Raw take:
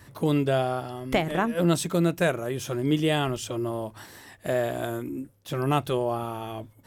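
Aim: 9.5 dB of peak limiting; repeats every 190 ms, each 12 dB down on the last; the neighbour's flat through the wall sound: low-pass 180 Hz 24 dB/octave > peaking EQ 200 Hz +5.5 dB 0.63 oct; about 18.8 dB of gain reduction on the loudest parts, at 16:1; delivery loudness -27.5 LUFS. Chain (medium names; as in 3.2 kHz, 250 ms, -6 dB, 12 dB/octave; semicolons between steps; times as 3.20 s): compression 16:1, threshold -37 dBFS; peak limiter -33.5 dBFS; low-pass 180 Hz 24 dB/octave; peaking EQ 200 Hz +5.5 dB 0.63 oct; feedback delay 190 ms, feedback 25%, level -12 dB; trim +21.5 dB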